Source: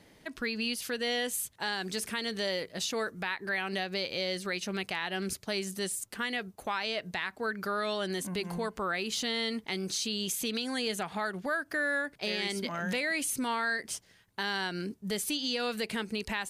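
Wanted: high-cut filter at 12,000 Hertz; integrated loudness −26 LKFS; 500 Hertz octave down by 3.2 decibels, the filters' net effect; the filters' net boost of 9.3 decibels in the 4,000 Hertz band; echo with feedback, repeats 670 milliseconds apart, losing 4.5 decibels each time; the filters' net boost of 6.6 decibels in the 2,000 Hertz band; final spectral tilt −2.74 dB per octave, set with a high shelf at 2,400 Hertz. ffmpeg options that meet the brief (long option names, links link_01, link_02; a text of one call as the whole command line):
ffmpeg -i in.wav -af "lowpass=12000,equalizer=frequency=500:width_type=o:gain=-4.5,equalizer=frequency=2000:width_type=o:gain=5,highshelf=frequency=2400:gain=4,equalizer=frequency=4000:width_type=o:gain=6.5,aecho=1:1:670|1340|2010|2680|3350|4020|4690|5360|6030:0.596|0.357|0.214|0.129|0.0772|0.0463|0.0278|0.0167|0.01,volume=-1dB" out.wav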